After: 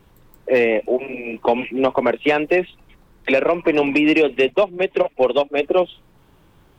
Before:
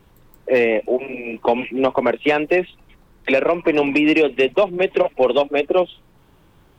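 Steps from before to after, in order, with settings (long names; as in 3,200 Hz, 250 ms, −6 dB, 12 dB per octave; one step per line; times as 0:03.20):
0:04.50–0:05.58: expander for the loud parts 1.5 to 1, over −27 dBFS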